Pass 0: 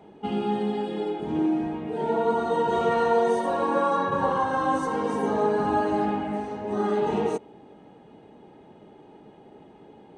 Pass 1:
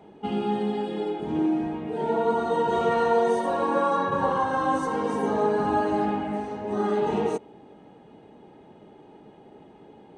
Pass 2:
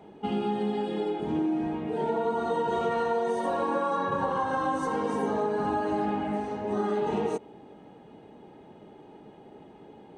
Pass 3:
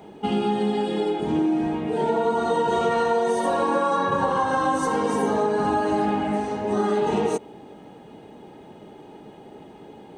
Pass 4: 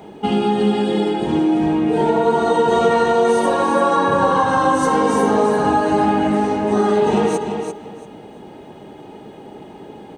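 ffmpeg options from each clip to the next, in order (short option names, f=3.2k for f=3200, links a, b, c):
-af anull
-af "acompressor=threshold=-24dB:ratio=6"
-af "highshelf=f=4.7k:g=9,volume=5.5dB"
-af "aecho=1:1:341|682|1023:0.447|0.0938|0.0197,volume=5.5dB"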